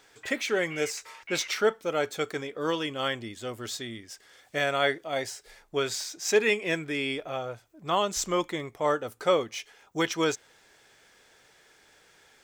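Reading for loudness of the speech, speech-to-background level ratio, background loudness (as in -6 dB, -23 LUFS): -29.5 LUFS, 13.0 dB, -42.5 LUFS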